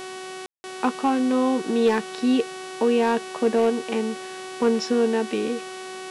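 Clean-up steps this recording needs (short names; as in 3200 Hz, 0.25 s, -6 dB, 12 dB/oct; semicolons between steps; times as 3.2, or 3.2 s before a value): clip repair -12 dBFS; de-hum 374.5 Hz, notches 30; room tone fill 0.46–0.64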